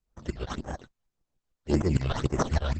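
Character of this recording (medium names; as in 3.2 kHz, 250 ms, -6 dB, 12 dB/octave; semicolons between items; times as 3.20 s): tremolo saw up 6.6 Hz, depth 95%; aliases and images of a low sample rate 2.4 kHz, jitter 0%; phasing stages 8, 1.8 Hz, lowest notch 250–4100 Hz; Opus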